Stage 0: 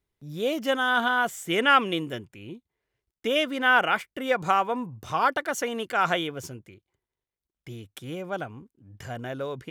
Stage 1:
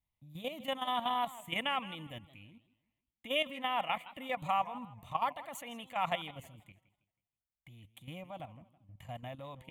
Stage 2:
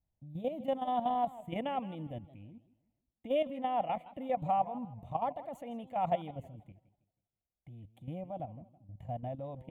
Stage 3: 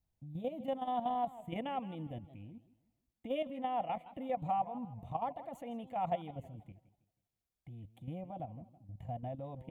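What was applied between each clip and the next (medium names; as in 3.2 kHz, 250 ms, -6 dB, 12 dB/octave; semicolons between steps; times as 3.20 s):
level held to a coarse grid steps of 12 dB; static phaser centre 1.5 kHz, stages 6; modulated delay 161 ms, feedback 34%, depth 183 cents, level -17.5 dB; trim -3 dB
FFT filter 740 Hz 0 dB, 1.1 kHz -16 dB, 7.7 kHz -22 dB; trim +5.5 dB
in parallel at -1 dB: compression, threshold -43 dBFS, peak gain reduction 16.5 dB; on the sum: band-stop 590 Hz, Q 12; trim -4.5 dB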